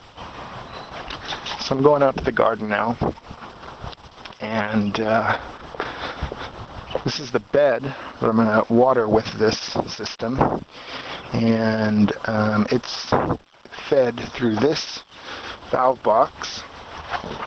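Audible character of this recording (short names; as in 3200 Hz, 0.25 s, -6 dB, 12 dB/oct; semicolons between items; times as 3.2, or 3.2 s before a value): a quantiser's noise floor 10-bit, dither none; tremolo triangle 5.5 Hz, depth 50%; Opus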